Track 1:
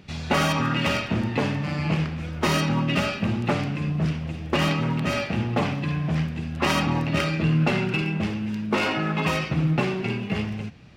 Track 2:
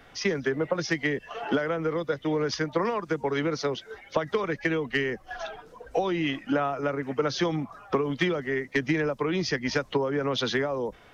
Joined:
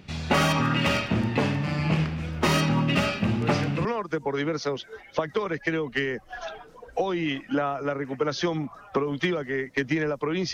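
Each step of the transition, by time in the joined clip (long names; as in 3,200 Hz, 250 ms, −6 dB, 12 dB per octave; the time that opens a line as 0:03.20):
track 1
0:03.41: mix in track 2 from 0:02.39 0.44 s −6.5 dB
0:03.85: continue with track 2 from 0:02.83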